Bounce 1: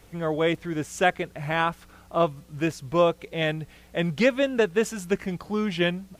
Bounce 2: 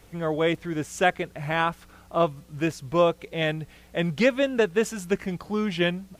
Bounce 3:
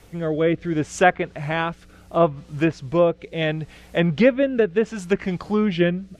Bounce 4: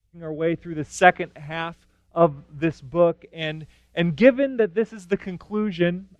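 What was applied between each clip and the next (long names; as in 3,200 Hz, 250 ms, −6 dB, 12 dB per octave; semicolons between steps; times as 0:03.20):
no processing that can be heard
rotating-speaker cabinet horn 0.7 Hz; treble cut that deepens with the level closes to 2,200 Hz, closed at −21 dBFS; level +6.5 dB
multiband upward and downward expander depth 100%; level −3 dB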